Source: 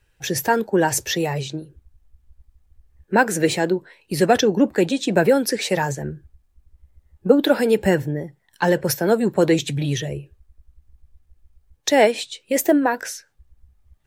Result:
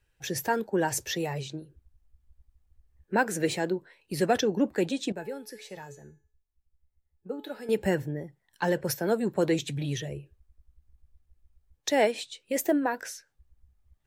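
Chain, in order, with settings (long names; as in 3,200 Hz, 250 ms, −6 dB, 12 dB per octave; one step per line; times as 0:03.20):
0:05.12–0:07.69: tuned comb filter 430 Hz, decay 0.49 s, mix 80%
level −8.5 dB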